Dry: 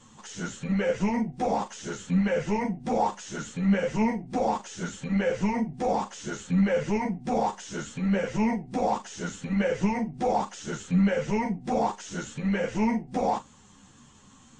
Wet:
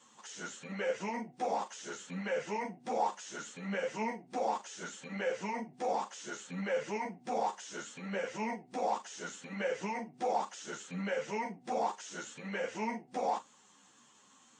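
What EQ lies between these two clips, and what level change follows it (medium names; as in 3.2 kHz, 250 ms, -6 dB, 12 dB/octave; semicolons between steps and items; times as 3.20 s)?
Bessel high-pass 450 Hz, order 2; -5.0 dB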